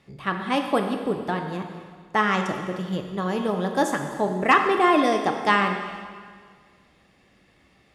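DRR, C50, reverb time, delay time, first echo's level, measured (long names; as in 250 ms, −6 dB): 4.0 dB, 6.0 dB, 1.8 s, no echo audible, no echo audible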